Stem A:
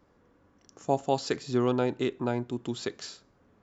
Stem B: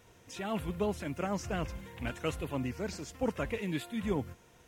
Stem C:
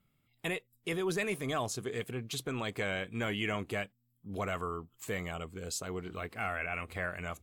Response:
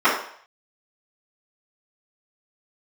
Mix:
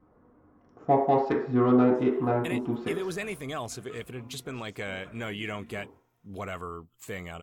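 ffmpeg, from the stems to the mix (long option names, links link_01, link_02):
-filter_complex "[0:a]adynamicsmooth=sensitivity=0.5:basefreq=1300,volume=1.5dB,asplit=2[link_01][link_02];[link_02]volume=-19dB[link_03];[1:a]adelay=1650,volume=-19.5dB,asplit=2[link_04][link_05];[link_05]volume=-19.5dB[link_06];[2:a]adelay=2000,volume=-1dB[link_07];[3:a]atrim=start_sample=2205[link_08];[link_03][link_06]amix=inputs=2:normalize=0[link_09];[link_09][link_08]afir=irnorm=-1:irlink=0[link_10];[link_01][link_04][link_07][link_10]amix=inputs=4:normalize=0"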